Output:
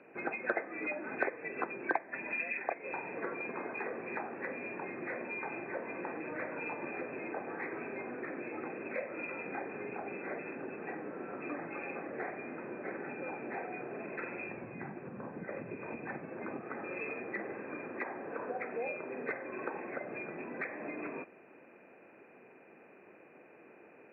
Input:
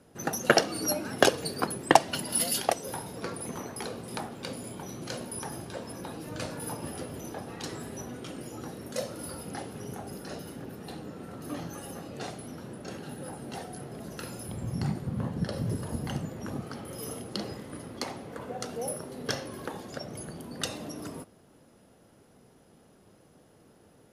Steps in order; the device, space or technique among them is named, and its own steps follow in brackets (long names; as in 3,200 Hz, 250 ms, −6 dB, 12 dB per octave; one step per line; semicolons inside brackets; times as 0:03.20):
hearing aid with frequency lowering (hearing-aid frequency compression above 1,500 Hz 4 to 1; downward compressor 3 to 1, threshold −38 dBFS, peak gain reduction 19.5 dB; loudspeaker in its box 340–5,400 Hz, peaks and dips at 360 Hz +4 dB, 2,200 Hz −8 dB, 4,200 Hz +10 dB)
level +3.5 dB